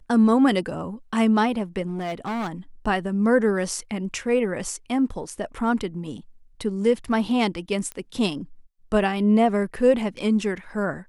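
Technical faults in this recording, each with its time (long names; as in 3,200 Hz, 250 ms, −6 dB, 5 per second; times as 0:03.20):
0:01.86–0:02.52: clipping −24.5 dBFS
0:07.92: click −18 dBFS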